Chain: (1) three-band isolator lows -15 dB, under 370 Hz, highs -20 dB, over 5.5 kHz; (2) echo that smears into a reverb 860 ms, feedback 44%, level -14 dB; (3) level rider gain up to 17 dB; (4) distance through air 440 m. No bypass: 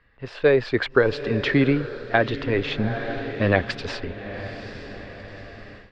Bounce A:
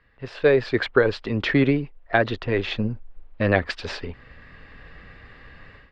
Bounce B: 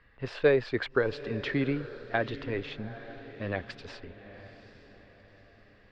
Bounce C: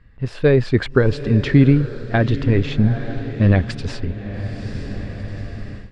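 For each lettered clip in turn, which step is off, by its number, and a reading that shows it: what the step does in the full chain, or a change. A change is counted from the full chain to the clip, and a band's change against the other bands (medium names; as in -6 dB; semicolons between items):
2, momentary loudness spread change -6 LU; 3, momentary loudness spread change +1 LU; 1, 125 Hz band +13.0 dB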